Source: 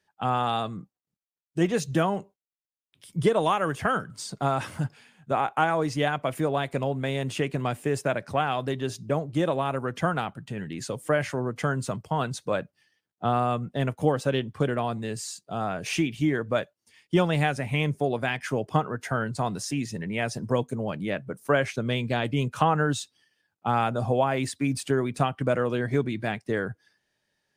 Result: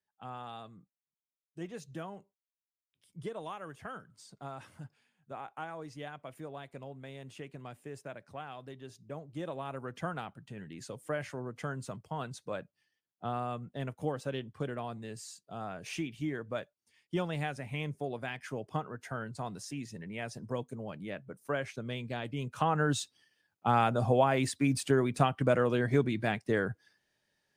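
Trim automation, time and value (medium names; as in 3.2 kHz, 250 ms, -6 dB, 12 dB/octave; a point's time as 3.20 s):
8.93 s -18 dB
9.84 s -11 dB
22.39 s -11 dB
23.01 s -2 dB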